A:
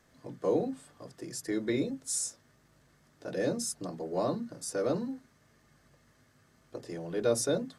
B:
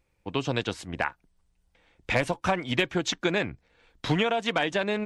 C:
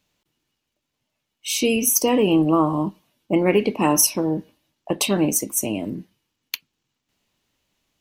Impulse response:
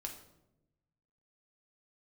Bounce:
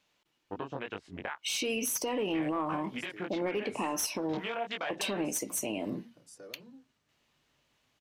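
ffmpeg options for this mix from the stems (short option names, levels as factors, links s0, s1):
-filter_complex "[0:a]alimiter=level_in=1.26:limit=0.0631:level=0:latency=1:release=229,volume=0.794,adelay=1650,volume=0.178[s0];[1:a]afwtdn=0.02,acompressor=threshold=0.0282:ratio=10,flanger=delay=20:depth=2.2:speed=2.9,adelay=250,volume=0.794[s1];[2:a]volume=0.473,asplit=2[s2][s3];[s3]apad=whole_len=415964[s4];[s0][s4]sidechaincompress=threshold=0.0501:ratio=8:attack=16:release=285[s5];[s1][s2]amix=inputs=2:normalize=0,asplit=2[s6][s7];[s7]highpass=f=720:p=1,volume=5.01,asoftclip=type=tanh:threshold=0.376[s8];[s6][s8]amix=inputs=2:normalize=0,lowpass=f=3200:p=1,volume=0.501,acompressor=threshold=0.0447:ratio=6,volume=1[s9];[s5][s9]amix=inputs=2:normalize=0,alimiter=limit=0.0668:level=0:latency=1:release=87"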